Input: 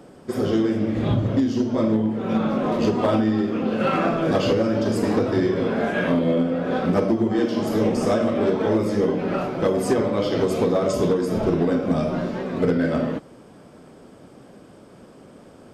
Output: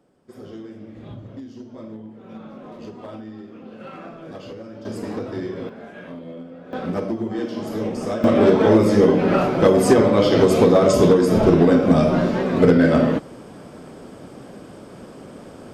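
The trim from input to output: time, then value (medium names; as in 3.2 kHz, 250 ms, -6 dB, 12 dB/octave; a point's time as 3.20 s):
-16.5 dB
from 4.85 s -8 dB
from 5.69 s -16 dB
from 6.73 s -5 dB
from 8.24 s +6.5 dB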